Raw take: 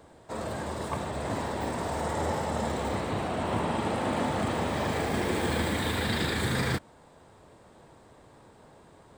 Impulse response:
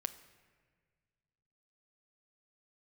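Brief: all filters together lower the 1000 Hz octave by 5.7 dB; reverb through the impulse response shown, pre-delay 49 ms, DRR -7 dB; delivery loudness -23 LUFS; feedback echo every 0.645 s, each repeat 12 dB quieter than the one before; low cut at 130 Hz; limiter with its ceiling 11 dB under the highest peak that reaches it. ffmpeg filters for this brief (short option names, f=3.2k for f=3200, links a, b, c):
-filter_complex "[0:a]highpass=130,equalizer=f=1k:t=o:g=-7.5,alimiter=level_in=4dB:limit=-24dB:level=0:latency=1,volume=-4dB,aecho=1:1:645|1290|1935:0.251|0.0628|0.0157,asplit=2[a][b];[1:a]atrim=start_sample=2205,adelay=49[c];[b][c]afir=irnorm=-1:irlink=0,volume=7.5dB[d];[a][d]amix=inputs=2:normalize=0,volume=6.5dB"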